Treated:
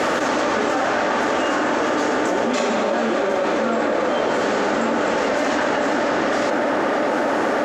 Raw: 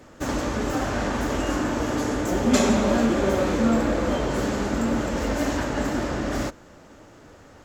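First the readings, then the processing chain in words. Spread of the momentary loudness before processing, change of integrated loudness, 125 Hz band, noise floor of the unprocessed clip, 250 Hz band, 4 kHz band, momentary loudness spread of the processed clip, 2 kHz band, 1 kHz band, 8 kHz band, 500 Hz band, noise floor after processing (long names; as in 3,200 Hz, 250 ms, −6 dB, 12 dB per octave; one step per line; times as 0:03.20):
7 LU, +4.0 dB, −8.5 dB, −49 dBFS, 0.0 dB, +5.5 dB, 0 LU, +9.0 dB, +9.0 dB, 0.0 dB, +6.5 dB, −21 dBFS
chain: Bessel high-pass filter 660 Hz, order 2
spectral tilt −1.5 dB per octave
notch filter 1,000 Hz, Q 16
speech leveller
bit-depth reduction 10 bits, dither none
high-frequency loss of the air 72 metres
on a send: tape delay 607 ms, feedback 62%, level −10 dB, low-pass 2,400 Hz
on the sum: envelope flattener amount 100%
level +5.5 dB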